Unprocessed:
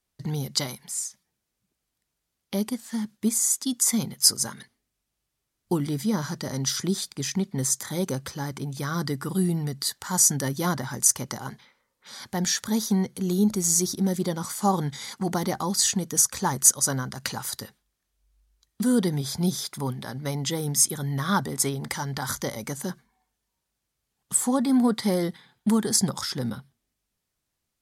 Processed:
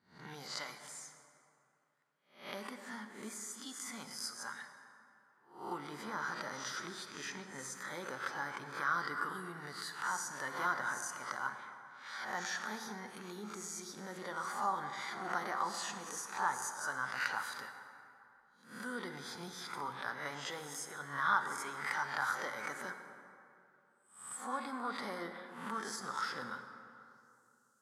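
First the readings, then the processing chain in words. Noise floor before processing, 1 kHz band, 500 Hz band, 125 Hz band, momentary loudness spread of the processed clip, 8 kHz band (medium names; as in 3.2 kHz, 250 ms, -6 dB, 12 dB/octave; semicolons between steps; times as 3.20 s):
-81 dBFS, -4.5 dB, -15.5 dB, -26.0 dB, 13 LU, -21.5 dB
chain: reverse spectral sustain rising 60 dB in 0.42 s; treble shelf 9.3 kHz +6.5 dB; compression 2:1, threshold -32 dBFS, peak gain reduction 13.5 dB; band-pass sweep 1.4 kHz -> 7.4 kHz, 26.54–27.35 s; plate-style reverb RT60 2.7 s, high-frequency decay 0.5×, DRR 6.5 dB; trim +4.5 dB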